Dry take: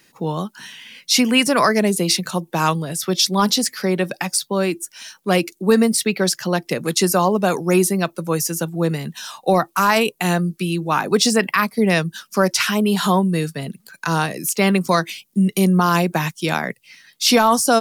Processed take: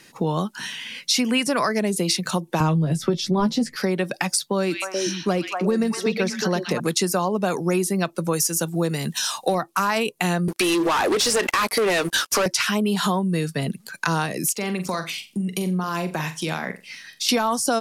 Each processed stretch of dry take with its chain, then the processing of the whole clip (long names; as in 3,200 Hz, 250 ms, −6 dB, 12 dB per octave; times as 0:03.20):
0:02.60–0:03.76: spectral tilt −3.5 dB per octave + double-tracking delay 13 ms −6 dB + multiband upward and downward compressor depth 40%
0:04.58–0:06.80: de-essing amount 65% + parametric band 6,000 Hz +8 dB 0.55 octaves + echo through a band-pass that steps 120 ms, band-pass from 2,800 Hz, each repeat −1.4 octaves, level −0.5 dB
0:08.33–0:09.55: bass and treble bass −2 dB, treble +7 dB + hard clipping −6.5 dBFS
0:10.48–0:12.46: high-pass filter 330 Hz 24 dB per octave + downward compressor 2.5 to 1, threshold −29 dBFS + leveller curve on the samples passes 5
0:14.52–0:17.29: downward compressor 2.5 to 1, threshold −33 dBFS + flutter between parallel walls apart 7.5 metres, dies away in 0.27 s
whole clip: low-pass filter 12,000 Hz 12 dB per octave; downward compressor 4 to 1, threshold −26 dBFS; level +5.5 dB